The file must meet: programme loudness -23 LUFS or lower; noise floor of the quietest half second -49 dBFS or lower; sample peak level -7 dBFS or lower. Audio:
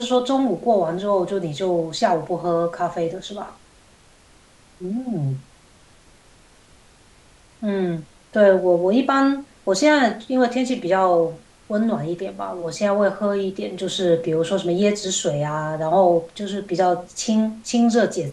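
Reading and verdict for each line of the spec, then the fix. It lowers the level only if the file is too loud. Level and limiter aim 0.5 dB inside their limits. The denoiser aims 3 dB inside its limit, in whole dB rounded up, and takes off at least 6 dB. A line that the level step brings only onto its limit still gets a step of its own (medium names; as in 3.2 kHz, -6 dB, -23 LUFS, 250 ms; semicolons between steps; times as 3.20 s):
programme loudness -21.0 LUFS: fail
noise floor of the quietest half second -52 dBFS: pass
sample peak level -4.0 dBFS: fail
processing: trim -2.5 dB; peak limiter -7.5 dBFS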